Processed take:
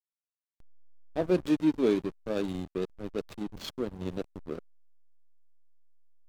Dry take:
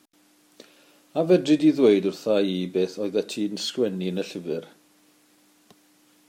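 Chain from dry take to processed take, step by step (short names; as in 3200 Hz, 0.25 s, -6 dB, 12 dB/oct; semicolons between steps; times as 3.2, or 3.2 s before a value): 1.3–3.91 bell 600 Hz -4.5 dB 1.4 oct; backlash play -22 dBFS; gain -5 dB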